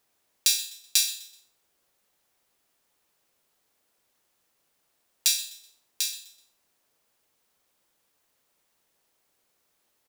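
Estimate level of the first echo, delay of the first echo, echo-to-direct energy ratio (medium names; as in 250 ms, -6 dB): -17.0 dB, 126 ms, -16.5 dB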